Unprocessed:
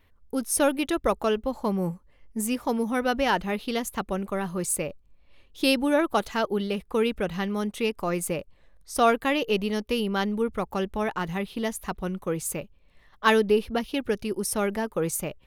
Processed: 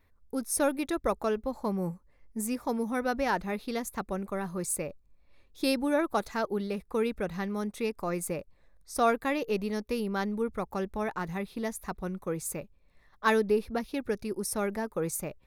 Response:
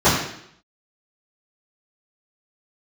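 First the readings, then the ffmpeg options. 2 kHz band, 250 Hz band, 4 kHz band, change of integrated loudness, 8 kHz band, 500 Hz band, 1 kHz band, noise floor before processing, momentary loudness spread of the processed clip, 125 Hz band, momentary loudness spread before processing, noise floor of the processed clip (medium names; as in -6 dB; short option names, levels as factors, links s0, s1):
-5.5 dB, -4.5 dB, -9.5 dB, -5.0 dB, -4.5 dB, -4.5 dB, -4.5 dB, -59 dBFS, 9 LU, -4.5 dB, 9 LU, -64 dBFS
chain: -af "equalizer=f=3000:w=6.5:g=-14.5,volume=0.596"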